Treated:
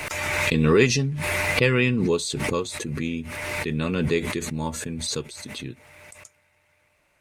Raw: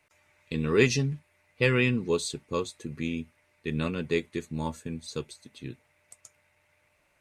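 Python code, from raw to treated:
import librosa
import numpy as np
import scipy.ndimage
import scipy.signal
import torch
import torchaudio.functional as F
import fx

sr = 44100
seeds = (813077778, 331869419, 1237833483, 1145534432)

y = fx.pre_swell(x, sr, db_per_s=23.0)
y = y * 10.0 ** (3.0 / 20.0)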